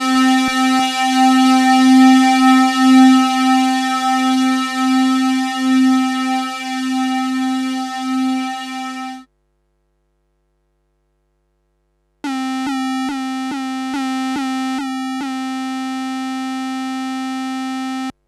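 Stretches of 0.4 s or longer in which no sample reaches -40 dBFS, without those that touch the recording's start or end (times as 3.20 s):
9.24–12.24 s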